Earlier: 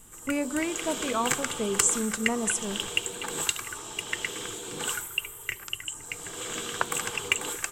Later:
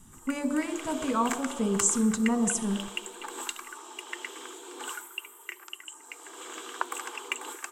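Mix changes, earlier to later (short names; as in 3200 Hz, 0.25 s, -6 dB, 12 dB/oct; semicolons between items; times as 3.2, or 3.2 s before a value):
speech: send +9.5 dB; background: add rippled Chebyshev high-pass 250 Hz, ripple 9 dB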